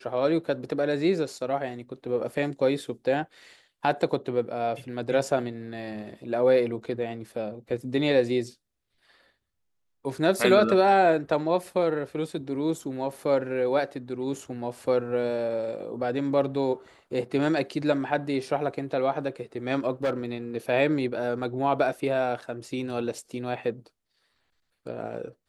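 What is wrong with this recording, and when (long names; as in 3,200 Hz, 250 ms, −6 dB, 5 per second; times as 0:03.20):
0:20.03–0:20.13: clipping −21 dBFS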